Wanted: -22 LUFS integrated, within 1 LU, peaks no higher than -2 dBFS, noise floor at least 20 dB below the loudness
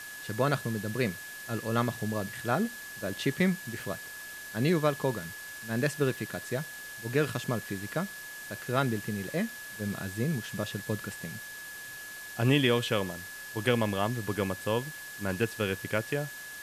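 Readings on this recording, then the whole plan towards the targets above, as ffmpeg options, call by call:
steady tone 1.7 kHz; tone level -42 dBFS; noise floor -43 dBFS; noise floor target -52 dBFS; loudness -32.0 LUFS; peak level -12.5 dBFS; loudness target -22.0 LUFS
-> -af "bandreject=f=1700:w=30"
-af "afftdn=nr=9:nf=-43"
-af "volume=3.16"

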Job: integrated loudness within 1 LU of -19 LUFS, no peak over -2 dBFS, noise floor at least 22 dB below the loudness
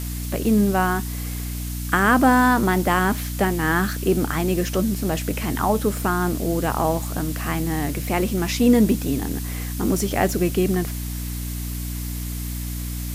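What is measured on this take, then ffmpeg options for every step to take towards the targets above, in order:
hum 60 Hz; highest harmonic 300 Hz; hum level -26 dBFS; noise floor -29 dBFS; noise floor target -44 dBFS; loudness -22.0 LUFS; peak level -5.5 dBFS; loudness target -19.0 LUFS
-> -af "bandreject=f=60:t=h:w=6,bandreject=f=120:t=h:w=6,bandreject=f=180:t=h:w=6,bandreject=f=240:t=h:w=6,bandreject=f=300:t=h:w=6"
-af "afftdn=nr=15:nf=-29"
-af "volume=1.41"

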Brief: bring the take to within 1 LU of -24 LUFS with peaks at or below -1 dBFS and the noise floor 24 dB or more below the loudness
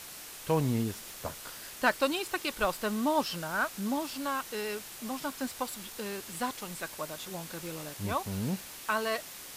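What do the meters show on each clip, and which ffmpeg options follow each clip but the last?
noise floor -46 dBFS; noise floor target -58 dBFS; loudness -33.5 LUFS; peak level -12.5 dBFS; loudness target -24.0 LUFS
-> -af "afftdn=nr=12:nf=-46"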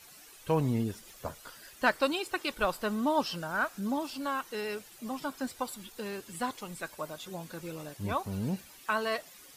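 noise floor -54 dBFS; noise floor target -58 dBFS
-> -af "afftdn=nr=6:nf=-54"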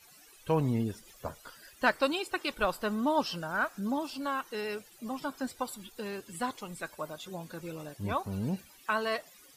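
noise floor -57 dBFS; noise floor target -58 dBFS
-> -af "afftdn=nr=6:nf=-57"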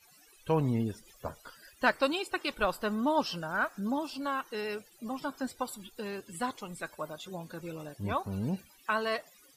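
noise floor -61 dBFS; loudness -34.0 LUFS; peak level -13.0 dBFS; loudness target -24.0 LUFS
-> -af "volume=3.16"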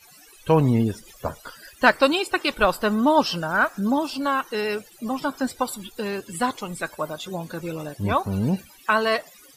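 loudness -24.0 LUFS; peak level -3.0 dBFS; noise floor -51 dBFS

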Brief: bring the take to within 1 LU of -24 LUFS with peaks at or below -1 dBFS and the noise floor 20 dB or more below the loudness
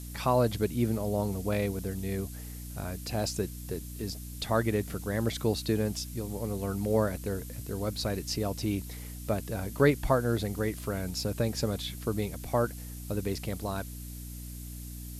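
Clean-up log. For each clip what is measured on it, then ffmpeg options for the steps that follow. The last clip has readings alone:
hum 60 Hz; highest harmonic 300 Hz; hum level -39 dBFS; noise floor -41 dBFS; noise floor target -52 dBFS; loudness -31.5 LUFS; peak level -11.0 dBFS; loudness target -24.0 LUFS
-> -af "bandreject=f=60:t=h:w=4,bandreject=f=120:t=h:w=4,bandreject=f=180:t=h:w=4,bandreject=f=240:t=h:w=4,bandreject=f=300:t=h:w=4"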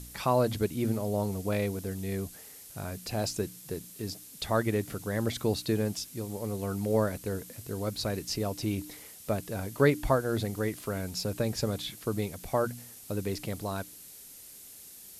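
hum not found; noise floor -49 dBFS; noise floor target -52 dBFS
-> -af "afftdn=nr=6:nf=-49"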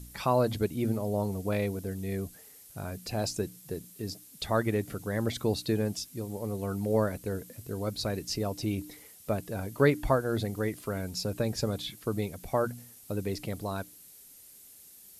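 noise floor -53 dBFS; loudness -32.0 LUFS; peak level -11.0 dBFS; loudness target -24.0 LUFS
-> -af "volume=2.51"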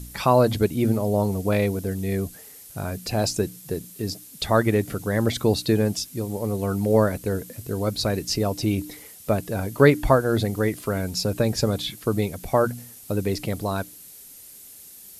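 loudness -24.0 LUFS; peak level -3.0 dBFS; noise floor -45 dBFS

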